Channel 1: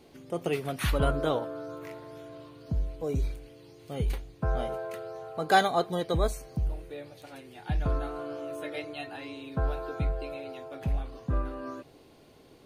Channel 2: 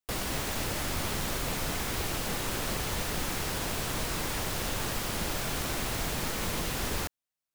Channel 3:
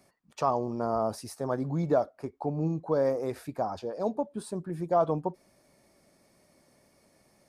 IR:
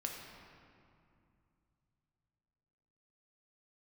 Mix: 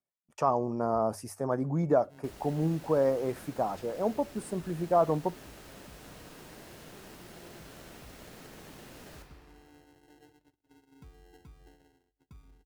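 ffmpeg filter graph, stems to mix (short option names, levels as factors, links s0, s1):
-filter_complex "[0:a]firequalizer=gain_entry='entry(420,0);entry(650,-20);entry(7100,2)':delay=0.05:min_phase=1,acompressor=threshold=0.0355:ratio=6,adelay=1450,volume=0.119,asplit=2[s0][s1];[s1]volume=0.299[s2];[1:a]highpass=f=210:p=1,adelay=2150,volume=0.168,asplit=2[s3][s4];[s4]volume=0.708[s5];[2:a]equalizer=f=4000:t=o:w=0.55:g=-13,volume=1.06,asplit=2[s6][s7];[s7]apad=whole_len=626545[s8];[s0][s8]sidechaincompress=threshold=0.01:ratio=8:attack=16:release=120[s9];[s9][s3]amix=inputs=2:normalize=0,acrusher=samples=37:mix=1:aa=0.000001,alimiter=level_in=12.6:limit=0.0631:level=0:latency=1,volume=0.0794,volume=1[s10];[3:a]atrim=start_sample=2205[s11];[s2][s5]amix=inputs=2:normalize=0[s12];[s12][s11]afir=irnorm=-1:irlink=0[s13];[s6][s10][s13]amix=inputs=3:normalize=0,agate=range=0.0251:threshold=0.00112:ratio=16:detection=peak,bandreject=f=50:t=h:w=6,bandreject=f=100:t=h:w=6"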